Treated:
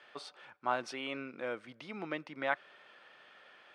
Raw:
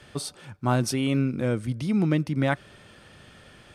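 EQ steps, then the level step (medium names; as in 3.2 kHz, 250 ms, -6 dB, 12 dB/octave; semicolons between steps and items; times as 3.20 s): band-pass 670–2900 Hz; -3.5 dB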